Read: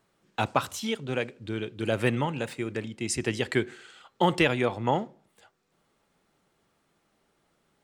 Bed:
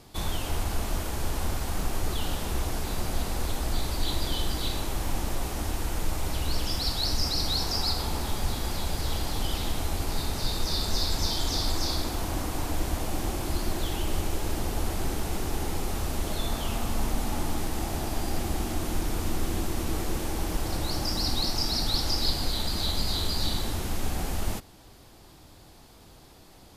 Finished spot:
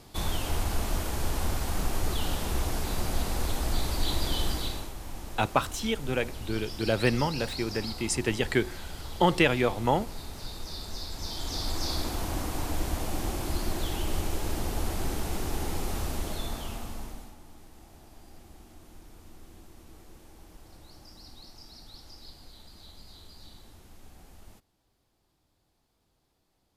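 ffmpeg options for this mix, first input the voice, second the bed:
-filter_complex "[0:a]adelay=5000,volume=1.06[s0];[1:a]volume=2.82,afade=t=out:st=4.48:d=0.45:silence=0.298538,afade=t=in:st=11.14:d=0.9:silence=0.354813,afade=t=out:st=16:d=1.36:silence=0.0944061[s1];[s0][s1]amix=inputs=2:normalize=0"

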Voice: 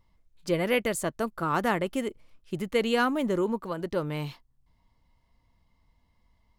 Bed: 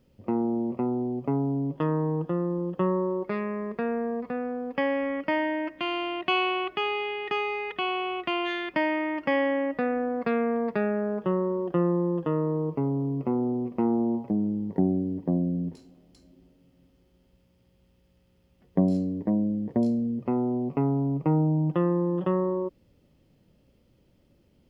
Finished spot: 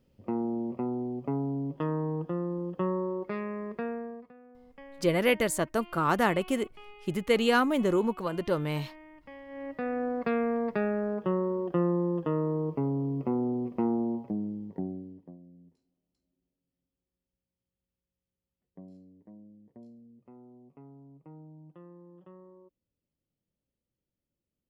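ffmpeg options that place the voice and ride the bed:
-filter_complex "[0:a]adelay=4550,volume=1.12[s0];[1:a]volume=6.31,afade=t=out:st=3.79:d=0.54:silence=0.11885,afade=t=in:st=9.47:d=0.59:silence=0.0944061,afade=t=out:st=13.72:d=1.65:silence=0.0630957[s1];[s0][s1]amix=inputs=2:normalize=0"

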